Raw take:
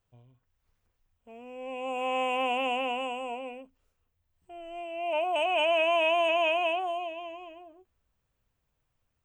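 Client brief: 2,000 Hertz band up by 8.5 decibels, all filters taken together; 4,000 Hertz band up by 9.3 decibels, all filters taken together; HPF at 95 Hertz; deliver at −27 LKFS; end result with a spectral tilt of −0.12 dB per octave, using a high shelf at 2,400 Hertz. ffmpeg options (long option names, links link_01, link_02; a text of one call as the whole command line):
ffmpeg -i in.wav -af "highpass=95,equalizer=frequency=2000:width_type=o:gain=3.5,highshelf=frequency=2400:gain=8,equalizer=frequency=4000:width_type=o:gain=5,volume=-4.5dB" out.wav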